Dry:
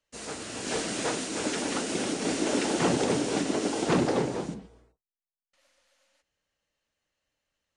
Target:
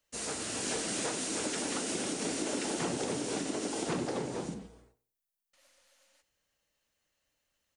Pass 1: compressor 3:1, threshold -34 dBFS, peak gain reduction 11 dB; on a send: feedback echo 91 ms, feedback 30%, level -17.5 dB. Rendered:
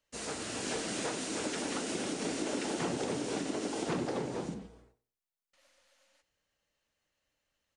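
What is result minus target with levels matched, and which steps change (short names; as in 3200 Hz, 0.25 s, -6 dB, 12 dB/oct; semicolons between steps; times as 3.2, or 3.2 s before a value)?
8000 Hz band -3.5 dB
add after compressor: high shelf 8200 Hz +11 dB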